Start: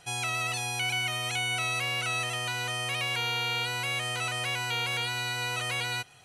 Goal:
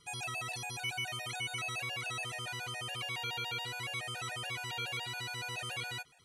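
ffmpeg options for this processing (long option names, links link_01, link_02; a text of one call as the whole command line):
ffmpeg -i in.wav -af "afftfilt=real='re*gt(sin(2*PI*7.1*pts/sr)*(1-2*mod(floor(b*sr/1024/480),2)),0)':imag='im*gt(sin(2*PI*7.1*pts/sr)*(1-2*mod(floor(b*sr/1024/480),2)),0)':win_size=1024:overlap=0.75,volume=-5dB" out.wav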